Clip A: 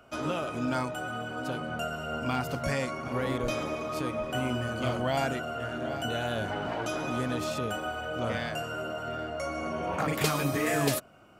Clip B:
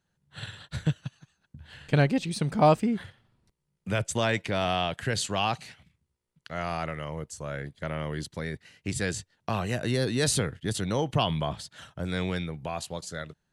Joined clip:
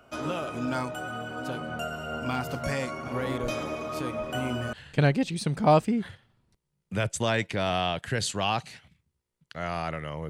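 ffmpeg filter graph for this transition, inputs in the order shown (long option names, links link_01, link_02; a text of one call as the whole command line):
ffmpeg -i cue0.wav -i cue1.wav -filter_complex "[0:a]apad=whole_dur=10.29,atrim=end=10.29,atrim=end=4.732[link_01];[1:a]atrim=start=1.678:end=7.24[link_02];[link_01][link_02]acrossfade=duration=0.004:curve1=hsin:curve2=hsin" out.wav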